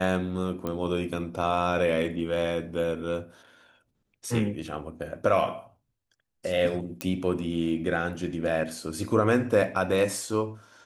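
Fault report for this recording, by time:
0.67 pop -19 dBFS
7.01 pop -15 dBFS

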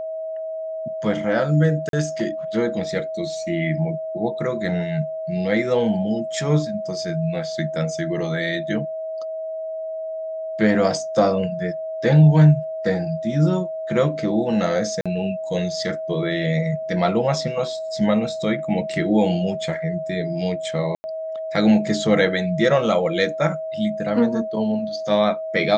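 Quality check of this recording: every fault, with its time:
tone 640 Hz -26 dBFS
1.89–1.93 gap 42 ms
15.01–15.06 gap 46 ms
20.95–21.04 gap 90 ms

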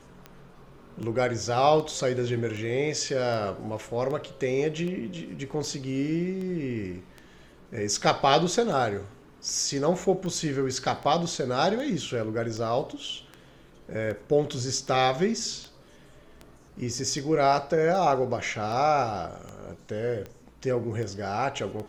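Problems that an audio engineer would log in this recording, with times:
tick 78 rpm -25 dBFS

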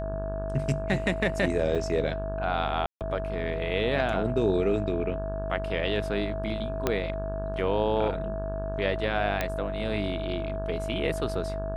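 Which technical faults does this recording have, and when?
buzz 50 Hz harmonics 34 -34 dBFS
tone 650 Hz -33 dBFS
1.75–1.76 gap 6.2 ms
2.86–3.01 gap 0.148 s
6.87 pop -10 dBFS
9.41 pop -12 dBFS

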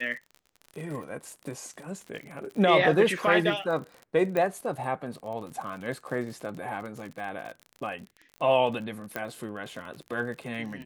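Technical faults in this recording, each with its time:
crackle 43/s -36 dBFS
4.37 pop -16 dBFS
9.16 pop -17 dBFS

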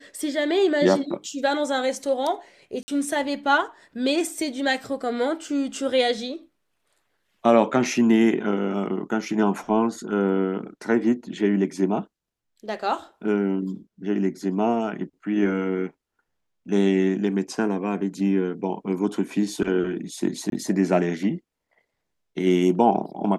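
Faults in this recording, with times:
2.83–2.88 gap 50 ms
20.5–20.52 gap 22 ms

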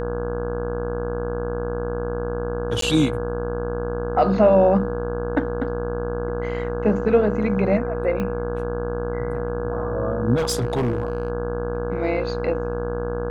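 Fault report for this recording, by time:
buzz 60 Hz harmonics 28 -29 dBFS
tone 480 Hz -27 dBFS
2.81–2.82 gap 13 ms
8.2 pop -15 dBFS
10.36–11.3 clipped -17.5 dBFS

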